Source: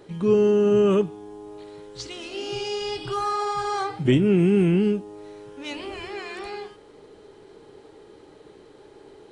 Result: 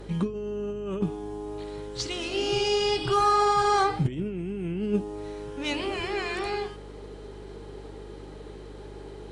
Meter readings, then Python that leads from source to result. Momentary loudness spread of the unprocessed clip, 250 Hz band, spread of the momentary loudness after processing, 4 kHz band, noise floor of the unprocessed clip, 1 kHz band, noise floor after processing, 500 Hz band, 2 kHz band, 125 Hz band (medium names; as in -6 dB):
23 LU, -8.0 dB, 21 LU, +3.5 dB, -50 dBFS, +4.0 dB, -43 dBFS, -5.5 dB, +2.0 dB, -5.5 dB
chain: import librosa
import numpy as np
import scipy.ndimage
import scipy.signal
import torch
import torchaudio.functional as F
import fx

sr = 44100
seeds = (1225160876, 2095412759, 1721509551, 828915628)

y = fx.over_compress(x, sr, threshold_db=-24.0, ratio=-0.5)
y = fx.cheby_harmonics(y, sr, harmonics=(4,), levels_db=(-34,), full_scale_db=-12.0)
y = fx.add_hum(y, sr, base_hz=50, snr_db=16)